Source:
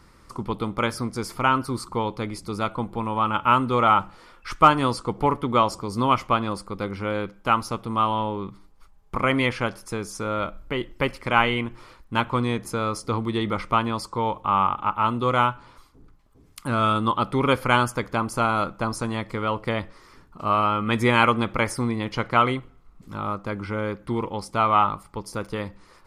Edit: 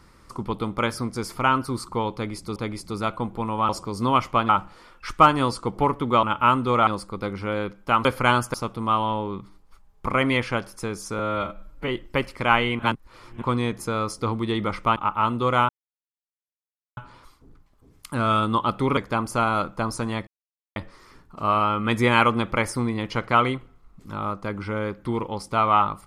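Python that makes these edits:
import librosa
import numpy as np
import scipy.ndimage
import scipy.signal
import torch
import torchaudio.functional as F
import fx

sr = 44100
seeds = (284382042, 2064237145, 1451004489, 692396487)

y = fx.edit(x, sr, fx.repeat(start_s=2.14, length_s=0.42, count=2),
    fx.swap(start_s=3.27, length_s=0.64, other_s=5.65, other_length_s=0.8),
    fx.stretch_span(start_s=10.28, length_s=0.46, factor=1.5),
    fx.reverse_span(start_s=11.65, length_s=0.63),
    fx.cut(start_s=13.82, length_s=0.95),
    fx.insert_silence(at_s=15.5, length_s=1.28),
    fx.move(start_s=17.5, length_s=0.49, to_s=7.63),
    fx.silence(start_s=19.29, length_s=0.49), tone=tone)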